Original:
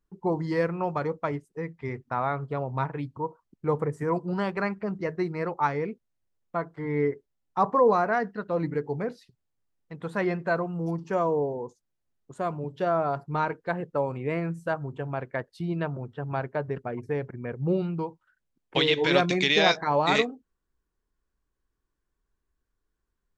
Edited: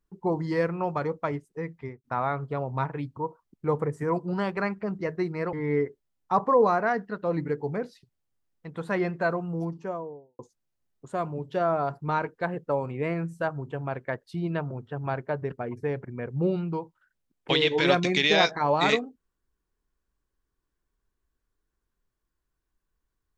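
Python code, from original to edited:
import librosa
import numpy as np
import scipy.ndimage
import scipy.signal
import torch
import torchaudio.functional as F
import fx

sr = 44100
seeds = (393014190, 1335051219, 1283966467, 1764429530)

y = fx.studio_fade_out(x, sr, start_s=1.76, length_s=0.28)
y = fx.studio_fade_out(y, sr, start_s=10.67, length_s=0.98)
y = fx.edit(y, sr, fx.cut(start_s=5.53, length_s=1.26), tone=tone)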